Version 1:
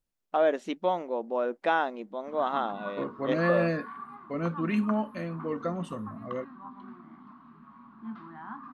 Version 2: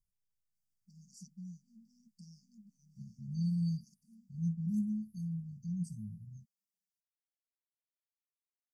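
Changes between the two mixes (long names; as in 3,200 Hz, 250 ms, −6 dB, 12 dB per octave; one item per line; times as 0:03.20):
first voice: entry +0.55 s
background: muted
master: add linear-phase brick-wall band-stop 210–4,500 Hz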